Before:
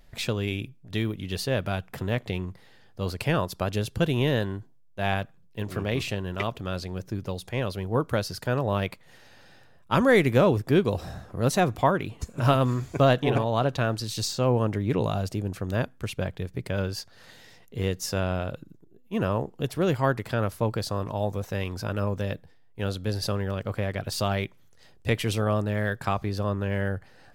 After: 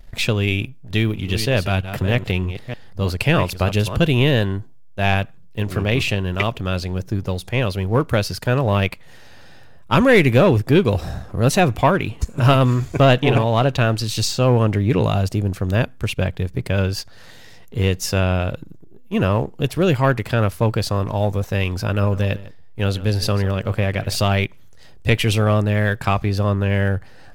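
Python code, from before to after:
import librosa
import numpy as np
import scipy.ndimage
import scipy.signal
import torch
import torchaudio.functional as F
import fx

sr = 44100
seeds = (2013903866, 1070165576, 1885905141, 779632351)

y = fx.reverse_delay(x, sr, ms=307, wet_db=-10, at=(0.59, 3.97))
y = fx.echo_single(y, sr, ms=150, db=-16.5, at=(22.01, 24.24), fade=0.02)
y = fx.low_shelf(y, sr, hz=68.0, db=11.0)
y = fx.leveller(y, sr, passes=1)
y = fx.dynamic_eq(y, sr, hz=2600.0, q=2.2, threshold_db=-44.0, ratio=4.0, max_db=6)
y = F.gain(torch.from_numpy(y), 3.0).numpy()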